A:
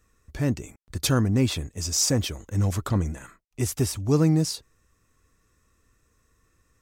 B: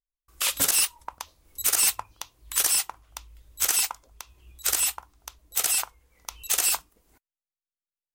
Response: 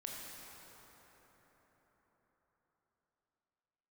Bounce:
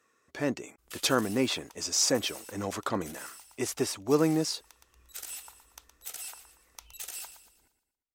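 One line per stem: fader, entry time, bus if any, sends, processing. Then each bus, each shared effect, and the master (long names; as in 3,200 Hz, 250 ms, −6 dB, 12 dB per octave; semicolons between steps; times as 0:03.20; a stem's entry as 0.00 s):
+2.0 dB, 0.00 s, no send, no echo send, high-pass filter 370 Hz 12 dB per octave; high-shelf EQ 6,700 Hz −10 dB
−8.5 dB, 0.50 s, no send, echo send −11 dB, notch filter 1,100 Hz, Q 6.3; downward compressor 2.5 to 1, threshold −33 dBFS, peak gain reduction 10 dB; automatic ducking −8 dB, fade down 1.50 s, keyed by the first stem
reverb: not used
echo: repeating echo 117 ms, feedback 42%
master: no processing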